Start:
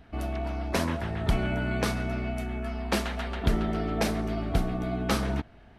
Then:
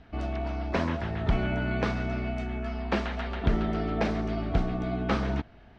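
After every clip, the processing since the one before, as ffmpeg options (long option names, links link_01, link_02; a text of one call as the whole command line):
ffmpeg -i in.wav -filter_complex "[0:a]lowpass=frequency=6200:width=0.5412,lowpass=frequency=6200:width=1.3066,acrossover=split=3100[link_01][link_02];[link_02]acompressor=threshold=-49dB:ratio=4:attack=1:release=60[link_03];[link_01][link_03]amix=inputs=2:normalize=0" out.wav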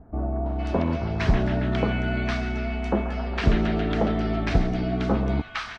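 ffmpeg -i in.wav -filter_complex "[0:a]acrossover=split=1100[link_01][link_02];[link_02]adelay=460[link_03];[link_01][link_03]amix=inputs=2:normalize=0,volume=5dB" out.wav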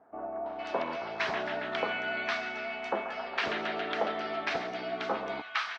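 ffmpeg -i in.wav -af "highpass=670,lowpass=5300" out.wav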